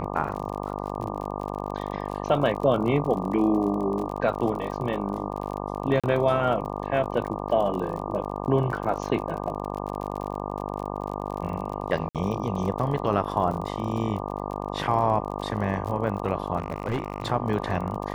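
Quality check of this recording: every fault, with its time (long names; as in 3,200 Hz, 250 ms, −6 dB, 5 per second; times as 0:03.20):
mains buzz 50 Hz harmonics 24 −32 dBFS
surface crackle 45 per second −33 dBFS
0:06.00–0:06.04: drop-out 36 ms
0:12.09–0:12.15: drop-out 57 ms
0:16.57–0:17.28: clipping −22 dBFS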